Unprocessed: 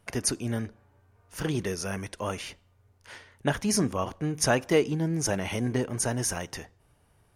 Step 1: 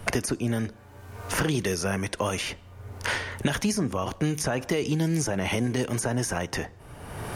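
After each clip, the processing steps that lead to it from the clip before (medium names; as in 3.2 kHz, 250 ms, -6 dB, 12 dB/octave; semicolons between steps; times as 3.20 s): peak limiter -20.5 dBFS, peak gain reduction 10.5 dB; three bands compressed up and down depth 100%; trim +4 dB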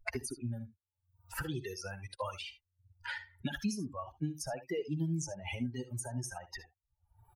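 expander on every frequency bin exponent 3; early reflections 61 ms -16 dB, 75 ms -16.5 dB; trim -5 dB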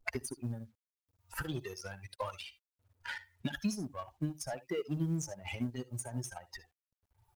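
companding laws mixed up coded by A; trim +2 dB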